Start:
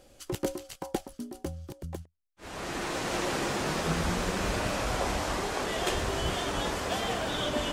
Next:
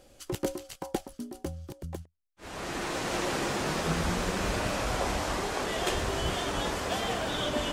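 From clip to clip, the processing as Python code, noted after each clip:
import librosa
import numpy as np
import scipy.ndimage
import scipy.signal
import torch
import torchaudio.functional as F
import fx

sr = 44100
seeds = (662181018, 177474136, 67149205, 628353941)

y = x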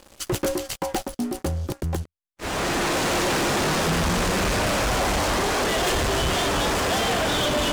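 y = fx.leveller(x, sr, passes=5)
y = F.gain(torch.from_numpy(y), -3.5).numpy()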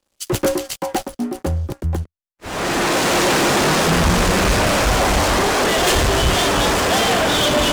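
y = fx.band_widen(x, sr, depth_pct=100)
y = F.gain(torch.from_numpy(y), 6.5).numpy()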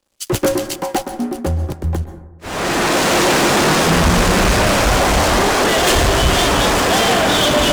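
y = fx.rev_plate(x, sr, seeds[0], rt60_s=1.0, hf_ratio=0.3, predelay_ms=115, drr_db=11.0)
y = F.gain(torch.from_numpy(y), 2.0).numpy()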